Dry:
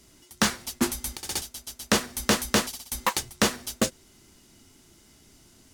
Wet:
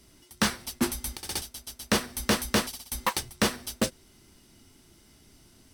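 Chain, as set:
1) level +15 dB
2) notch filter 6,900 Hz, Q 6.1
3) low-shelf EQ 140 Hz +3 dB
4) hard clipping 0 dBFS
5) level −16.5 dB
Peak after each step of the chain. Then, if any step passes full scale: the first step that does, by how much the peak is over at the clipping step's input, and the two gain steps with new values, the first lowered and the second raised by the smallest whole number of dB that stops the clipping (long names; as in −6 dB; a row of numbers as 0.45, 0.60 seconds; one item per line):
+6.5, +6.5, +7.0, 0.0, −16.5 dBFS
step 1, 7.0 dB
step 1 +8 dB, step 5 −9.5 dB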